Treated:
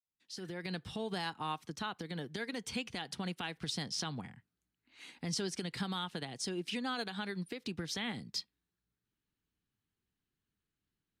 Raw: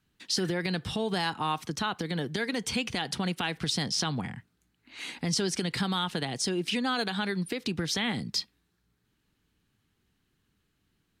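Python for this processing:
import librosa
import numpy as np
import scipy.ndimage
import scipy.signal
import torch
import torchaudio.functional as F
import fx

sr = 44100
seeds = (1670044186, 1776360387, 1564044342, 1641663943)

y = fx.fade_in_head(x, sr, length_s=0.72)
y = fx.upward_expand(y, sr, threshold_db=-42.0, expansion=1.5)
y = F.gain(torch.from_numpy(y), -7.0).numpy()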